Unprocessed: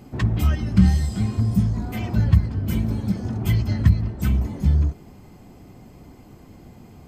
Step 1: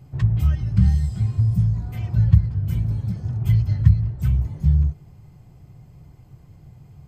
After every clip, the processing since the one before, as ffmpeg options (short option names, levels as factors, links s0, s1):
-af "lowshelf=f=180:t=q:w=3:g=8,volume=0.355"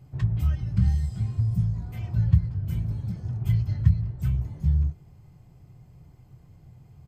-filter_complex "[0:a]asplit=2[s0][s1];[s1]adelay=24,volume=0.237[s2];[s0][s2]amix=inputs=2:normalize=0,volume=0.562"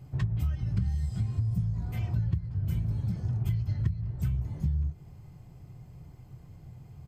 -af "acompressor=threshold=0.0398:ratio=6,volume=1.33"